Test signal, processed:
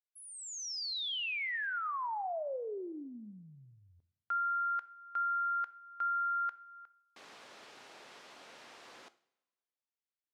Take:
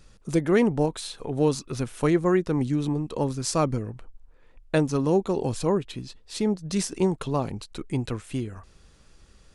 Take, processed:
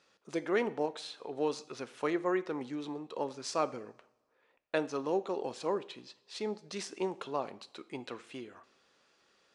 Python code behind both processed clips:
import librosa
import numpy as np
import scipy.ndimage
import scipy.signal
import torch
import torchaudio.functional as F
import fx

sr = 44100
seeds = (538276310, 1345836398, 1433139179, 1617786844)

y = fx.bandpass_edges(x, sr, low_hz=430.0, high_hz=5000.0)
y = fx.rev_double_slope(y, sr, seeds[0], early_s=0.58, late_s=1.6, knee_db=-18, drr_db=13.5)
y = y * librosa.db_to_amplitude(-5.5)